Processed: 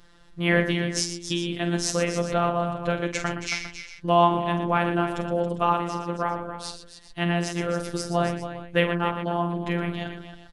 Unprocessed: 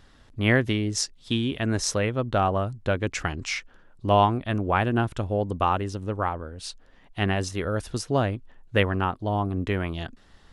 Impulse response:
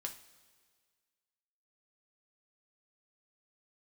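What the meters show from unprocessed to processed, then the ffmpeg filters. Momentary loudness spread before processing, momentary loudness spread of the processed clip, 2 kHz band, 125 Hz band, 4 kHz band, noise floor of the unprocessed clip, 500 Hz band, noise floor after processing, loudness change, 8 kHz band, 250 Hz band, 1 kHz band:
10 LU, 11 LU, +0.5 dB, −3.0 dB, +0.5 dB, −55 dBFS, +1.0 dB, −49 dBFS, +0.5 dB, +0.5 dB, +0.5 dB, +1.0 dB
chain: -af "aecho=1:1:46|118|275|402:0.376|0.299|0.299|0.158,afftfilt=real='hypot(re,im)*cos(PI*b)':imag='0':win_size=1024:overlap=0.75,volume=3dB"

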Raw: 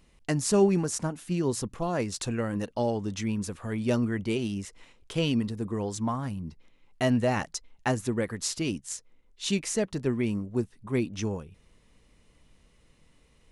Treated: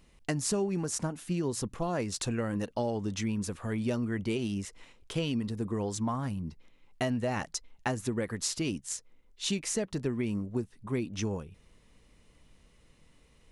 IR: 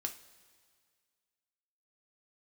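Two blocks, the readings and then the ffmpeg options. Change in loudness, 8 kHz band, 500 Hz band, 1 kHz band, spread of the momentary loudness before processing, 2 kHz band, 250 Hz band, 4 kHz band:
−3.5 dB, −1.0 dB, −5.0 dB, −3.5 dB, 10 LU, −3.5 dB, −4.0 dB, −2.0 dB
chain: -af "acompressor=threshold=-27dB:ratio=6"

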